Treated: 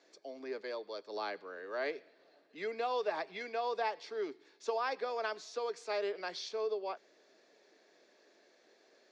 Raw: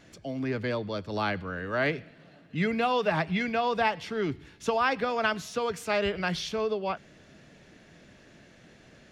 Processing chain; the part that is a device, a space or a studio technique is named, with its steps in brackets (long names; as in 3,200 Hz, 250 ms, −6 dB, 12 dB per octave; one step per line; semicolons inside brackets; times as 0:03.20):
phone speaker on a table (loudspeaker in its box 360–7,000 Hz, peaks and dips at 410 Hz +4 dB, 1,400 Hz −5 dB, 2,000 Hz −3 dB, 2,900 Hz −9 dB, 4,500 Hz +5 dB)
0:00.61–0:01.07: low-shelf EQ 200 Hz −10 dB
level −8 dB